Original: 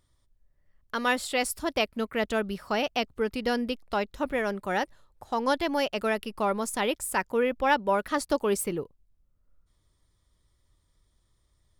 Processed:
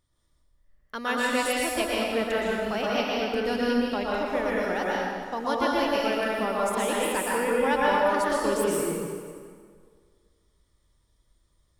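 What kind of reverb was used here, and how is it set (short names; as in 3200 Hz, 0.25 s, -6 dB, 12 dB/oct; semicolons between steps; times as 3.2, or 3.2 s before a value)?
plate-style reverb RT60 1.9 s, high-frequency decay 0.8×, pre-delay 0.105 s, DRR -5.5 dB; gain -4.5 dB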